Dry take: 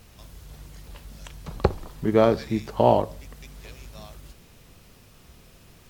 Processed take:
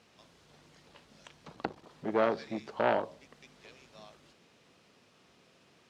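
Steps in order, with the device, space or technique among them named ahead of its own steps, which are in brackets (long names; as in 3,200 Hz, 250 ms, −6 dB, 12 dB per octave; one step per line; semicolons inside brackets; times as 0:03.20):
public-address speaker with an overloaded transformer (saturating transformer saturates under 1,000 Hz; band-pass filter 230–5,500 Hz)
level −6.5 dB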